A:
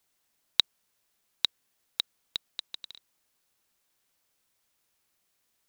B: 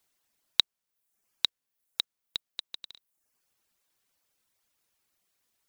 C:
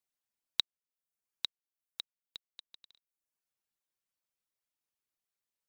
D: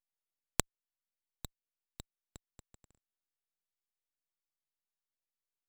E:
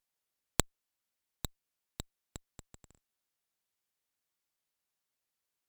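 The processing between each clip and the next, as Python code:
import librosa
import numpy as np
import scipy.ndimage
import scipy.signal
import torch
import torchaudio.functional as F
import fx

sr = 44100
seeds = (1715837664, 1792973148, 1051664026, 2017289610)

y1 = fx.dereverb_blind(x, sr, rt60_s=0.71)
y2 = fx.upward_expand(y1, sr, threshold_db=-36.0, expansion=1.5)
y2 = y2 * librosa.db_to_amplitude(-7.5)
y3 = fx.cheby_harmonics(y2, sr, harmonics=(3, 4), levels_db=(-7, -23), full_scale_db=-9.0)
y3 = np.abs(y3)
y3 = y3 * librosa.db_to_amplitude(4.0)
y4 = fx.tube_stage(y3, sr, drive_db=6.0, bias=0.65)
y4 = y4 * librosa.db_to_amplitude(10.5)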